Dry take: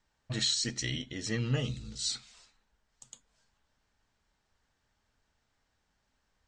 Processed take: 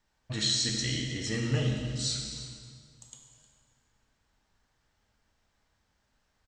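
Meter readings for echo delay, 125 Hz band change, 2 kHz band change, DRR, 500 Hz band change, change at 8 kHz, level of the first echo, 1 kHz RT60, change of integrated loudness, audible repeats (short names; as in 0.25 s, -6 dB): 0.31 s, +3.5 dB, +2.5 dB, 1.0 dB, +3.0 dB, +2.5 dB, -16.5 dB, 1.8 s, +2.5 dB, 1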